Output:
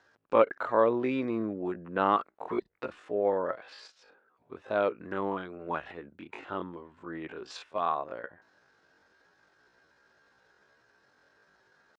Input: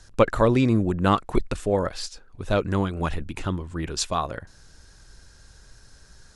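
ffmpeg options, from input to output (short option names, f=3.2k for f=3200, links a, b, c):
-af "highpass=370,lowpass=2.1k,atempo=0.53,volume=-3.5dB"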